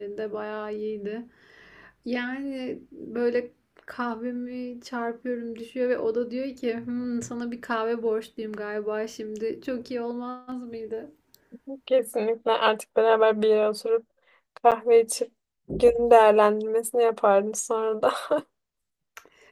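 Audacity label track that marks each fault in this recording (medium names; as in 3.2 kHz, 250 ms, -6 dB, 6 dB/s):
14.710000	14.720000	dropout 7.9 ms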